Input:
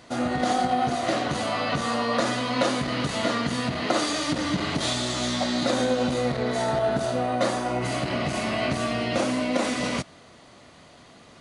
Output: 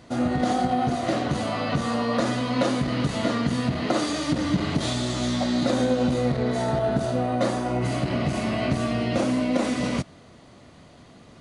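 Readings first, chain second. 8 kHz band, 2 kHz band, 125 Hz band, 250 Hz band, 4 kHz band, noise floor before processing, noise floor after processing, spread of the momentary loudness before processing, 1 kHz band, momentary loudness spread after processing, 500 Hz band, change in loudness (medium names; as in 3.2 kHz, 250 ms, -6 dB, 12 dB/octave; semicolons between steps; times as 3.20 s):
-3.5 dB, -3.0 dB, +5.0 dB, +3.5 dB, -3.5 dB, -51 dBFS, -50 dBFS, 3 LU, -1.5 dB, 3 LU, 0.0 dB, +0.5 dB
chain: bass shelf 410 Hz +9.5 dB; trim -3.5 dB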